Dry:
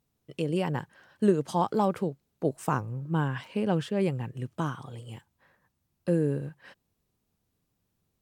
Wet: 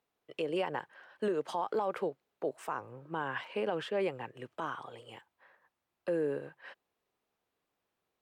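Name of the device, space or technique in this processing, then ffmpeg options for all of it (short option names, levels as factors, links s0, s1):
DJ mixer with the lows and highs turned down: -filter_complex "[0:a]acrossover=split=380 3500:gain=0.0794 1 0.224[s0][s1][s2];[s0][s1][s2]amix=inputs=3:normalize=0,alimiter=level_in=1.26:limit=0.0631:level=0:latency=1:release=83,volume=0.794,volume=1.33"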